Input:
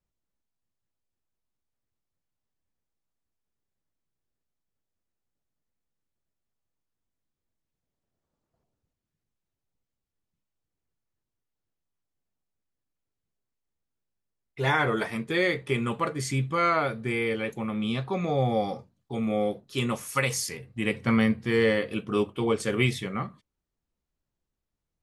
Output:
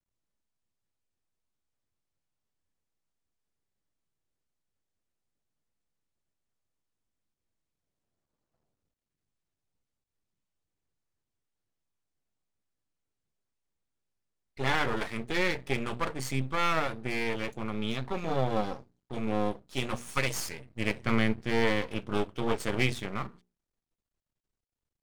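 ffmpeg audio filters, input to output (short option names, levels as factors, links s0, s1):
-af "bandreject=f=60:t=h:w=6,bandreject=f=120:t=h:w=6,bandreject=f=180:t=h:w=6,bandreject=f=240:t=h:w=6,aresample=22050,aresample=44100,aeval=exprs='max(val(0),0)':c=same"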